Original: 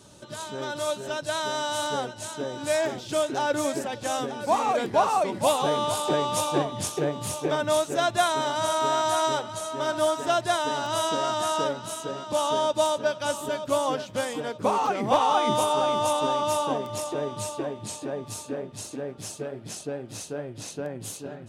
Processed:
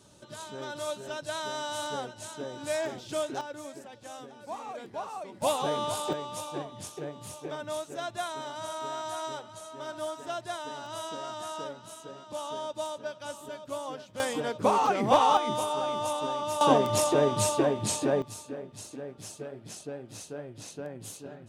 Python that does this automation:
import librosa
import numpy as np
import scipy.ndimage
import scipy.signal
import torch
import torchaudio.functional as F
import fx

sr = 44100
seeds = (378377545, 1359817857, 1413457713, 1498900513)

y = fx.gain(x, sr, db=fx.steps((0.0, -6.0), (3.41, -15.5), (5.42, -5.0), (6.13, -11.5), (14.2, 0.0), (15.37, -6.5), (16.61, 6.0), (18.22, -6.0)))